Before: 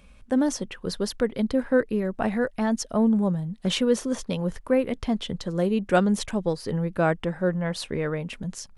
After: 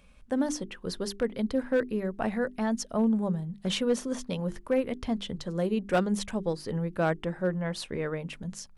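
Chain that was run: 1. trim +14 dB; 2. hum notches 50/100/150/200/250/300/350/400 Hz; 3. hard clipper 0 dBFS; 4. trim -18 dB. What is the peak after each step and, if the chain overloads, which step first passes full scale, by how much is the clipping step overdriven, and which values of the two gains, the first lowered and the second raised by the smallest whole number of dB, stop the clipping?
+7.0 dBFS, +5.5 dBFS, 0.0 dBFS, -18.0 dBFS; step 1, 5.5 dB; step 1 +8 dB, step 4 -12 dB

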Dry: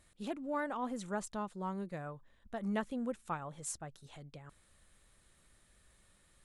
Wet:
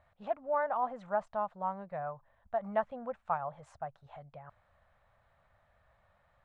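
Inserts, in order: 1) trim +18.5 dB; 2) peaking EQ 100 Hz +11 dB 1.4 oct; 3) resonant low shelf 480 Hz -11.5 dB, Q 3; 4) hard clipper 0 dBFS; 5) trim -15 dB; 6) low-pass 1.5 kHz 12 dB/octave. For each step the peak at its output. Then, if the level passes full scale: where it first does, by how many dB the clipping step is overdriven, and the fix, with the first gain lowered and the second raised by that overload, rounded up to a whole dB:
-5.5 dBFS, -4.5 dBFS, -2.0 dBFS, -2.0 dBFS, -17.0 dBFS, -18.0 dBFS; nothing clips

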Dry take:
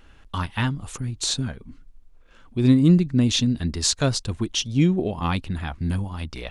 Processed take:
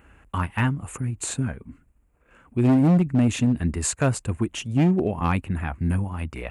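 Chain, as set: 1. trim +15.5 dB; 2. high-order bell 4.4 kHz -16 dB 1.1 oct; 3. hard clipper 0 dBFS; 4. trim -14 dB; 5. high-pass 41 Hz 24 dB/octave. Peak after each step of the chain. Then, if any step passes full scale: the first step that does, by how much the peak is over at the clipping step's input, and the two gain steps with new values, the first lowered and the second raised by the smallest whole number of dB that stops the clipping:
+9.0 dBFS, +9.0 dBFS, 0.0 dBFS, -14.0 dBFS, -9.5 dBFS; step 1, 9.0 dB; step 1 +6.5 dB, step 4 -5 dB

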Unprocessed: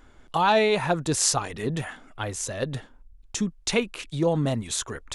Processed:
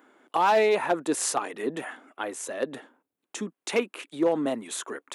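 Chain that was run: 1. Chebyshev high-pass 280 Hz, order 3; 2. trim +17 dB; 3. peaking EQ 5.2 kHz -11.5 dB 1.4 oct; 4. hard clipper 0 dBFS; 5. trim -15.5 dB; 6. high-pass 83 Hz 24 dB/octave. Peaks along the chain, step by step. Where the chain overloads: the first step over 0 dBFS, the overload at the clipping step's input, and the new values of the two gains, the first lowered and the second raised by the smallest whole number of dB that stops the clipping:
-7.0 dBFS, +10.0 dBFS, +6.5 dBFS, 0.0 dBFS, -15.5 dBFS, -13.0 dBFS; step 2, 6.5 dB; step 2 +10 dB, step 5 -8.5 dB

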